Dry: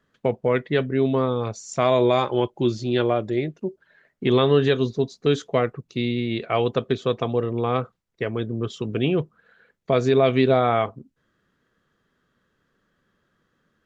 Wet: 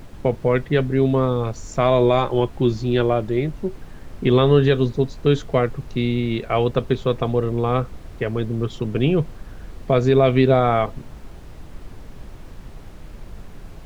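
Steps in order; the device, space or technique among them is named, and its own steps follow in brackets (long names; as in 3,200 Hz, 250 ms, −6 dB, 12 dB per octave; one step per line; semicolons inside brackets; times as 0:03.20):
car interior (parametric band 140 Hz +4.5 dB; high-shelf EQ 4,400 Hz −6 dB; brown noise bed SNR 14 dB)
level +2 dB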